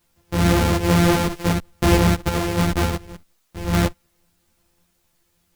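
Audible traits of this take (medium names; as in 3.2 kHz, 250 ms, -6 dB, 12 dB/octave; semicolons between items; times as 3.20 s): a buzz of ramps at a fixed pitch in blocks of 256 samples; random-step tremolo; a quantiser's noise floor 12-bit, dither triangular; a shimmering, thickened sound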